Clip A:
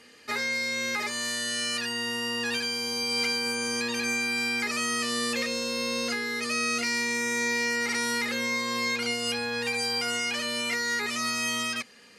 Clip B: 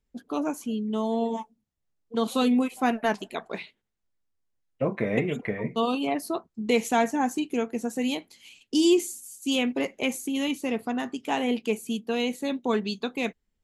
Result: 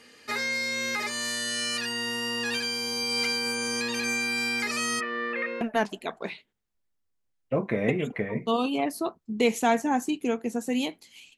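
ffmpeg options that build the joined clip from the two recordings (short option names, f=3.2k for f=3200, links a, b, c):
-filter_complex "[0:a]asplit=3[a][b][c];[a]afade=t=out:st=4.99:d=0.02[d];[b]highpass=340,equalizer=f=350:t=q:w=4:g=7,equalizer=f=790:t=q:w=4:g=-7,equalizer=f=1.4k:t=q:w=4:g=4,equalizer=f=2k:t=q:w=4:g=5,lowpass=f=2.2k:w=0.5412,lowpass=f=2.2k:w=1.3066,afade=t=in:st=4.99:d=0.02,afade=t=out:st=5.61:d=0.02[e];[c]afade=t=in:st=5.61:d=0.02[f];[d][e][f]amix=inputs=3:normalize=0,apad=whole_dur=11.37,atrim=end=11.37,atrim=end=5.612[g];[1:a]atrim=start=2.898:end=8.66[h];[g][h]acrossfade=d=0.004:c1=hsin:c2=hsin"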